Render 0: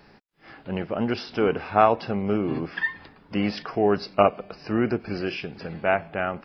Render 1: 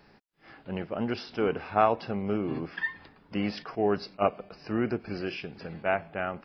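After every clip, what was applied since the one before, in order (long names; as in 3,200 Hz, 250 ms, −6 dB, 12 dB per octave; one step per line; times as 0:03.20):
level that may rise only so fast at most 500 dB per second
level −5 dB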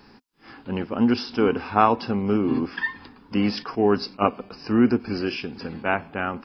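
thirty-one-band graphic EQ 160 Hz −5 dB, 250 Hz +9 dB, 630 Hz −9 dB, 1,000 Hz +4 dB, 2,000 Hz −4 dB, 5,000 Hz +5 dB
level +6.5 dB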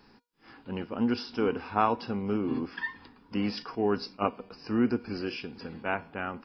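tuned comb filter 480 Hz, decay 0.29 s, harmonics all, mix 60%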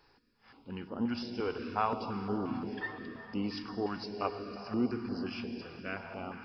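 dense smooth reverb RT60 4.8 s, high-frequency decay 0.75×, pre-delay 90 ms, DRR 5.5 dB
notch on a step sequencer 5.7 Hz 220–2,400 Hz
level −5 dB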